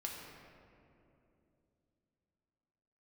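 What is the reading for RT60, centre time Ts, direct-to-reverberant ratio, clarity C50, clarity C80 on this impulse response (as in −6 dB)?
2.8 s, 97 ms, −1.5 dB, 1.5 dB, 2.5 dB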